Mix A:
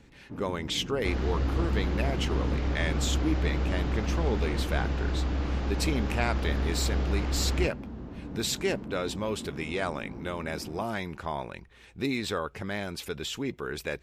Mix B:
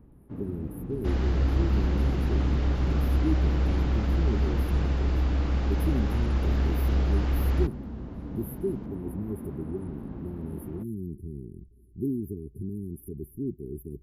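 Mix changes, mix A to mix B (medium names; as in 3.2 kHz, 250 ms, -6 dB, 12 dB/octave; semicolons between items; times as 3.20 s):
speech: add brick-wall FIR band-stop 420–9700 Hz; master: add bass shelf 160 Hz +5 dB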